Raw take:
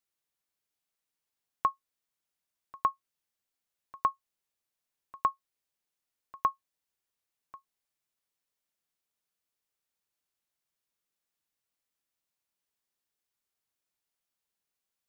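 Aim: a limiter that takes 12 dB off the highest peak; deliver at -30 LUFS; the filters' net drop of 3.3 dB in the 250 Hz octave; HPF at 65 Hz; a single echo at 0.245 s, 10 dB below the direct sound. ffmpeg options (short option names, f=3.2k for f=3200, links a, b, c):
-af "highpass=65,equalizer=f=250:t=o:g=-4.5,alimiter=level_in=2dB:limit=-24dB:level=0:latency=1,volume=-2dB,aecho=1:1:245:0.316,volume=14.5dB"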